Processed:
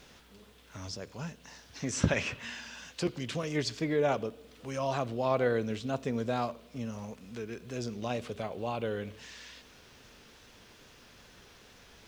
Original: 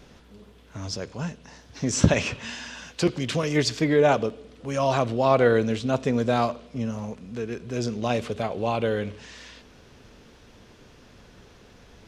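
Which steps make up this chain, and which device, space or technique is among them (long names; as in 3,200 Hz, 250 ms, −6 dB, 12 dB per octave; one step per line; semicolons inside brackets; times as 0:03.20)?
0:01.80–0:02.61: parametric band 1,800 Hz +5.5 dB 1.4 octaves
noise-reduction cassette on a plain deck (one half of a high-frequency compander encoder only; tape wow and flutter; white noise bed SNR 37 dB)
level −9 dB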